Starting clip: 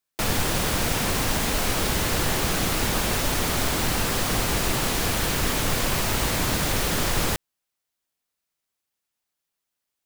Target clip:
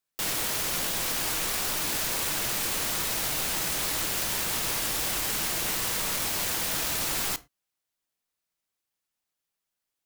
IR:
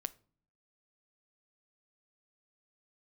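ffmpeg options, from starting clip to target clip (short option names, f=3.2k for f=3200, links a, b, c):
-filter_complex "[0:a]asettb=1/sr,asplit=3[a][b][c];[a]atrim=end=4.394[d];[b]atrim=start=4.39:end=5.38,asetpts=PTS-STARTPTS,afade=t=in:d=0.004:c=qsin,afade=t=out:st=0.986:d=0.004:c=qsin,aeval=exprs='val(0)+0.0251*(sin(2*PI*50*n/s)+sin(2*PI*2*50*n/s)/2+sin(2*PI*3*50*n/s)/3+sin(2*PI*4*50*n/s)/4+sin(2*PI*5*50*n/s)/5)':c=same[e];[c]atrim=start=5.376[f];[d][e]acrossfade=d=0.004:c1=hsin:c2=qsin[g];[g][f]acrossfade=d=0.004:c1=qsin:c2=hsin,aeval=exprs='(mod(11.9*val(0)+1,2)-1)/11.9':c=same[h];[1:a]atrim=start_sample=2205,afade=t=out:st=0.18:d=0.01,atrim=end_sample=8379,asetrate=48510,aresample=44100[i];[h][i]afir=irnorm=-1:irlink=0"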